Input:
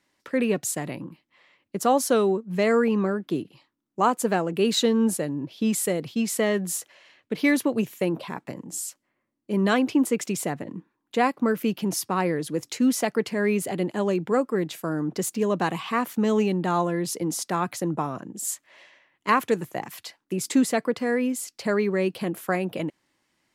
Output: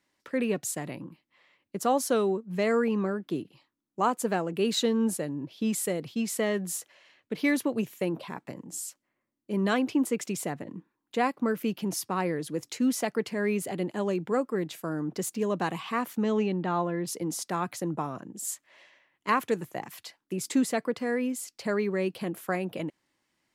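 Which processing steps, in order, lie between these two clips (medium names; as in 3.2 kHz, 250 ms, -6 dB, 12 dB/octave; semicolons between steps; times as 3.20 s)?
16.23–17.06 s: low-pass 5.5 kHz -> 2.9 kHz 12 dB/octave; trim -4.5 dB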